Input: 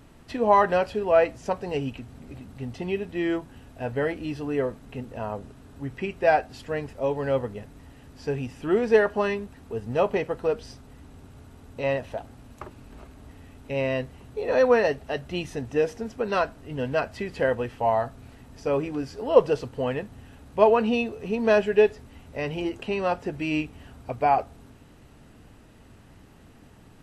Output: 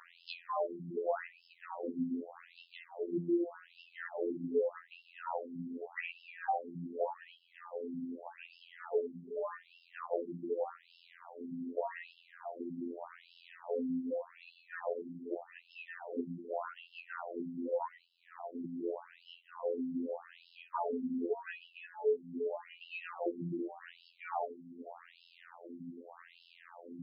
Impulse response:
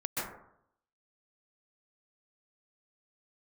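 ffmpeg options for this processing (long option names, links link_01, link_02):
-filter_complex "[0:a]acrossover=split=3100[link_01][link_02];[link_02]acompressor=threshold=-51dB:ratio=4:attack=1:release=60[link_03];[link_01][link_03]amix=inputs=2:normalize=0,asplit=2[link_04][link_05];[1:a]atrim=start_sample=2205,lowpass=2100[link_06];[link_05][link_06]afir=irnorm=-1:irlink=0,volume=-6.5dB[link_07];[link_04][link_07]amix=inputs=2:normalize=0,afftfilt=real='hypot(re,im)*cos(PI*b)':imag='0':win_size=2048:overlap=0.75,acompressor=threshold=-37dB:ratio=8,afftfilt=real='re*between(b*sr/1024,230*pow(3800/230,0.5+0.5*sin(2*PI*0.84*pts/sr))/1.41,230*pow(3800/230,0.5+0.5*sin(2*PI*0.84*pts/sr))*1.41)':imag='im*between(b*sr/1024,230*pow(3800/230,0.5+0.5*sin(2*PI*0.84*pts/sr))/1.41,230*pow(3800/230,0.5+0.5*sin(2*PI*0.84*pts/sr))*1.41)':win_size=1024:overlap=0.75,volume=9.5dB"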